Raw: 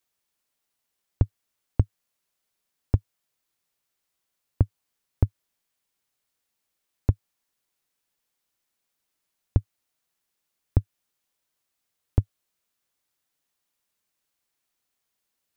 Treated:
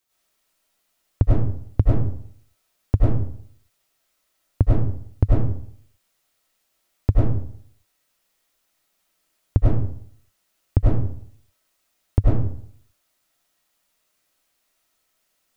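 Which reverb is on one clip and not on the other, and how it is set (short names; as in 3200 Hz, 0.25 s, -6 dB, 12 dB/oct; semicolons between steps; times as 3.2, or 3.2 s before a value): digital reverb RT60 0.6 s, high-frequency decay 0.6×, pre-delay 60 ms, DRR -7.5 dB; gain +2.5 dB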